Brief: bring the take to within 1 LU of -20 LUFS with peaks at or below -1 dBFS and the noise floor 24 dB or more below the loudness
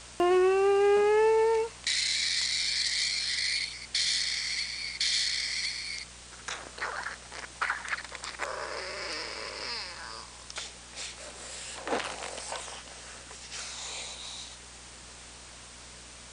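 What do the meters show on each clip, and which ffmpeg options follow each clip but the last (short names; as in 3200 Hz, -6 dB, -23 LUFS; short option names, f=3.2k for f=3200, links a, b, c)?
hum 60 Hz; harmonics up to 240 Hz; hum level -54 dBFS; noise floor -48 dBFS; noise floor target -54 dBFS; loudness -29.5 LUFS; peak -14.5 dBFS; loudness target -20.0 LUFS
-> -af "bandreject=f=60:t=h:w=4,bandreject=f=120:t=h:w=4,bandreject=f=180:t=h:w=4,bandreject=f=240:t=h:w=4"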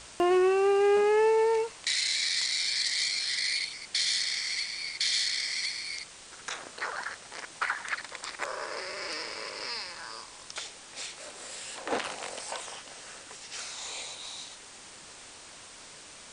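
hum none; noise floor -49 dBFS; noise floor target -54 dBFS
-> -af "afftdn=nr=6:nf=-49"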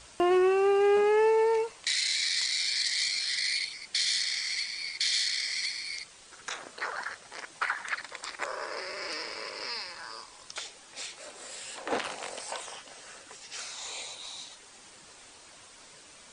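noise floor -53 dBFS; loudness -29.0 LUFS; peak -14.5 dBFS; loudness target -20.0 LUFS
-> -af "volume=9dB"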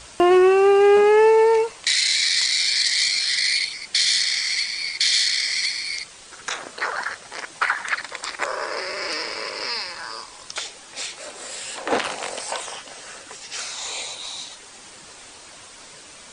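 loudness -20.0 LUFS; peak -5.5 dBFS; noise floor -44 dBFS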